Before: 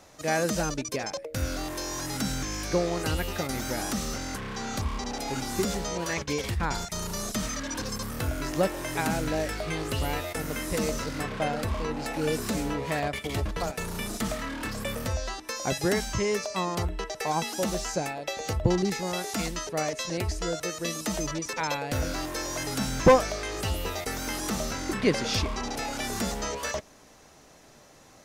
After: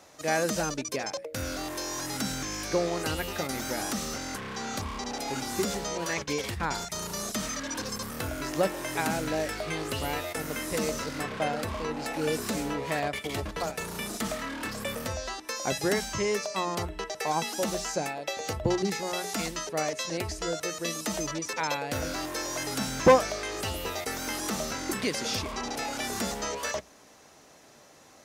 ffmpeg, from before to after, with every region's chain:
ffmpeg -i in.wav -filter_complex "[0:a]asettb=1/sr,asplit=3[link_01][link_02][link_03];[link_01]atrim=end=24.914[link_04];[link_02]atrim=start=24.91:end=25.52,asetpts=PTS-STARTPTS,afade=type=in:duration=0.004:curve=qsin,afade=type=out:start_time=0.606:duration=0.004:curve=qsin,highshelf=frequency=6300:gain=11.5,acrossover=split=870|2400[link_05][link_06][link_07];[link_05]acompressor=threshold=-27dB:ratio=4[link_08];[link_06]acompressor=threshold=-39dB:ratio=4[link_09];[link_07]acompressor=threshold=-32dB:ratio=4[link_10];[link_08][link_09][link_10]amix=inputs=3:normalize=0[link_11];[link_03]atrim=start=25.516[link_12];[link_04][link_11]acrossfade=duration=0.004:curve1=hsin:curve2=qsin[link_13];[link_13][link_12]acrossfade=duration=0.004:curve1=qsin:curve2=hsin,highpass=40,lowshelf=frequency=140:gain=-8,bandreject=frequency=60:width_type=h:width=6,bandreject=frequency=120:width_type=h:width=6,bandreject=frequency=180:width_type=h:width=6" out.wav

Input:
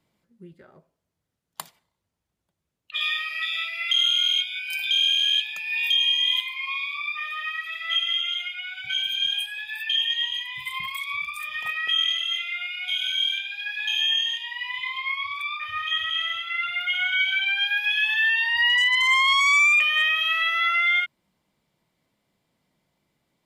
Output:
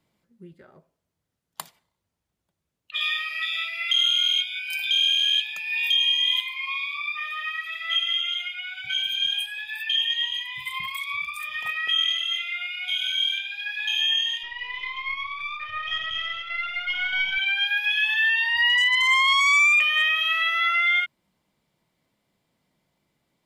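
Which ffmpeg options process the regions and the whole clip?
ffmpeg -i in.wav -filter_complex "[0:a]asettb=1/sr,asplit=3[link_01][link_02][link_03];[link_01]atrim=end=14.434[link_04];[link_02]atrim=start=14.43:end=17.38,asetpts=PTS-STARTPTS,afade=type=in:duration=0.004:curve=qsin,afade=type=out:start_time=2.946:duration=0.004:curve=qsin,aeval=exprs='if(lt(val(0),0),0.708*val(0),val(0))':channel_layout=same,lowpass=3500[link_05];[link_03]atrim=start=17.376[link_06];[link_04][link_05]acrossfade=duration=0.004:curve1=hsin:curve2=qsin[link_07];[link_07][link_06]acrossfade=duration=0.004:curve1=qsin:curve2=hsin" out.wav

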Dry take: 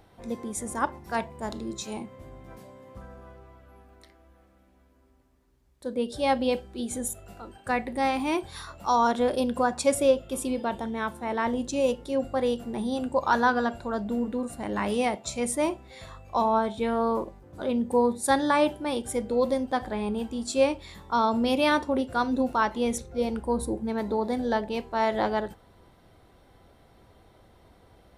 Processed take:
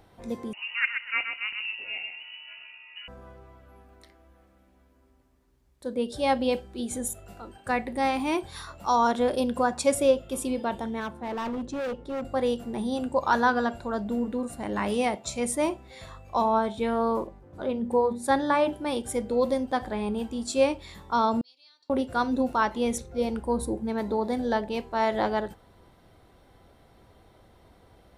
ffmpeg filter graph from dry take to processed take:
ffmpeg -i in.wav -filter_complex "[0:a]asettb=1/sr,asplit=3[link_01][link_02][link_03];[link_01]atrim=end=0.534[link_04];[link_02]atrim=start=0.53:end=3.08,asetpts=PTS-STARTPTS,afade=type=in:duration=0.004:curve=qsin,afade=type=out:start_time=2.546:duration=0.004:curve=qsin,aecho=1:1:127|254|381|508:0.473|0.132|0.0371|0.0104,atrim=end_sample=112455,lowpass=frequency=2600:width_type=q:width=0.5098,lowpass=frequency=2600:width_type=q:width=0.6013,lowpass=frequency=2600:width_type=q:width=0.9,lowpass=frequency=2600:width_type=q:width=2.563,afreqshift=-3000[link_05];[link_03]atrim=start=3.076[link_06];[link_04][link_05]acrossfade=duration=0.004:curve1=hsin:curve2=qsin[link_07];[link_07][link_06]acrossfade=duration=0.004:curve1=qsin:curve2=hsin,asettb=1/sr,asplit=3[link_08][link_09][link_10];[link_08]atrim=end=11.004[link_11];[link_09]atrim=start=11:end=12.25,asetpts=PTS-STARTPTS,afade=type=in:duration=0.004:curve=qsin,afade=type=out:start_time=1.246:duration=0.004:curve=qsin,lowpass=frequency=1600:poles=1,asoftclip=type=hard:threshold=-28.5dB[link_12];[link_10]atrim=start=12.246[link_13];[link_11][link_12]acrossfade=duration=0.004:curve1=hsin:curve2=qsin[link_14];[link_14][link_13]acrossfade=duration=0.004:curve1=qsin:curve2=hsin,asettb=1/sr,asplit=3[link_15][link_16][link_17];[link_15]atrim=end=17.274[link_18];[link_16]atrim=start=17.27:end=18.73,asetpts=PTS-STARTPTS,afade=type=in:duration=0.004:curve=qsin,afade=type=out:start_time=1.456:duration=0.004:curve=qsin,highshelf=frequency=3800:gain=-9,bandreject=frequency=60:width_type=h:width=6,bandreject=frequency=120:width_type=h:width=6,bandreject=frequency=180:width_type=h:width=6,bandreject=frequency=240:width_type=h:width=6,bandreject=frequency=300:width_type=h:width=6[link_19];[link_17]atrim=start=18.726[link_20];[link_18][link_19]acrossfade=duration=0.004:curve1=hsin:curve2=qsin[link_21];[link_21][link_20]acrossfade=duration=0.004:curve1=qsin:curve2=hsin,asettb=1/sr,asplit=3[link_22][link_23][link_24];[link_22]atrim=end=21.414[link_25];[link_23]atrim=start=21.41:end=21.9,asetpts=PTS-STARTPTS,afade=type=in:duration=0.004:curve=qsin,afade=type=out:start_time=0.486:duration=0.004:curve=qsin,acompressor=threshold=-33dB:ratio=6:attack=3.2:release=140:knee=1:detection=peak,bandpass=frequency=4400:width_type=q:width=9.7[link_26];[link_24]atrim=start=21.896[link_27];[link_25][link_26]acrossfade=duration=0.004:curve1=hsin:curve2=qsin[link_28];[link_28][link_27]acrossfade=duration=0.004:curve1=qsin:curve2=hsin" out.wav

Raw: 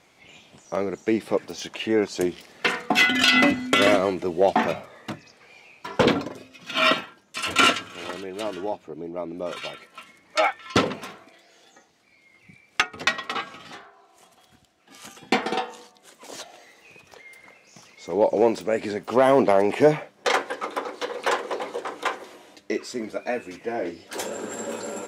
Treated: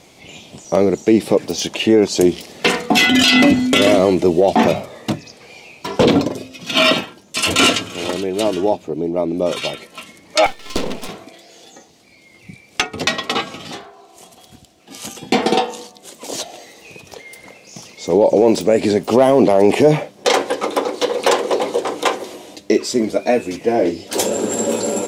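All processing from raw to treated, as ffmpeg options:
ffmpeg -i in.wav -filter_complex "[0:a]asettb=1/sr,asplit=3[link_01][link_02][link_03];[link_01]atrim=end=10.464[link_04];[link_02]atrim=start=10.46:end=11.09,asetpts=PTS-STARTPTS,afade=type=in:duration=0.004:curve=qsin,afade=type=out:start_time=0.626:duration=0.004:curve=qsin,aeval=exprs='max(val(0),0)':channel_layout=same,equalizer=frequency=65:width_type=o:width=1.8:gain=-8.5,acompressor=threshold=-29dB:ratio=3:attack=3.2:release=140:knee=1:detection=peak[link_05];[link_03]atrim=start=11.086[link_06];[link_04][link_05]acrossfade=duration=0.004:curve1=hsin:curve2=qsin[link_07];[link_07][link_06]acrossfade=duration=0.004:curve1=qsin:curve2=hsin,equalizer=frequency=1500:width_type=o:width=1.4:gain=-11,alimiter=level_in=16.5dB:limit=-1dB:release=50:level=0:latency=1,volume=-2dB" out.wav

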